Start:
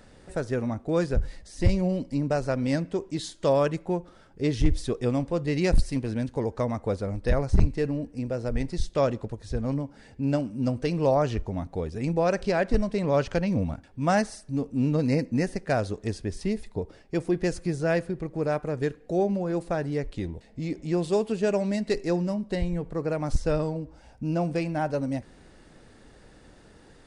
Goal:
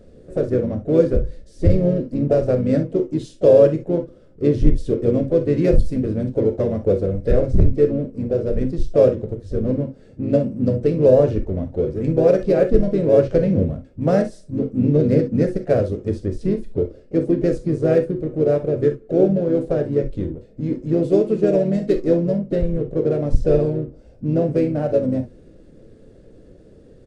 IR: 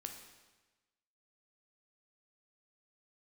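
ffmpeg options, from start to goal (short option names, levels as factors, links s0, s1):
-filter_complex "[0:a]lowshelf=f=700:t=q:w=3:g=7.5,asetrate=42845,aresample=44100,atempo=1.0293,asplit=2[s0][s1];[s1]adynamicsmooth=sensitivity=4:basefreq=560,volume=0.794[s2];[s0][s2]amix=inputs=2:normalize=0,asplit=3[s3][s4][s5];[s4]asetrate=35002,aresample=44100,atempo=1.25992,volume=0.355[s6];[s5]asetrate=52444,aresample=44100,atempo=0.840896,volume=0.141[s7];[s3][s6][s7]amix=inputs=3:normalize=0[s8];[1:a]atrim=start_sample=2205,atrim=end_sample=3969,asetrate=52920,aresample=44100[s9];[s8][s9]afir=irnorm=-1:irlink=0,volume=0.794"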